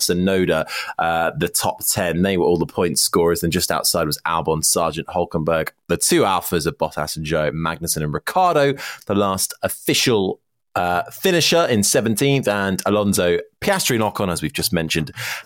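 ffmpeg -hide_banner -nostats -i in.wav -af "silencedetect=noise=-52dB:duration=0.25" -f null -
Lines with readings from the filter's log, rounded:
silence_start: 10.36
silence_end: 10.75 | silence_duration: 0.39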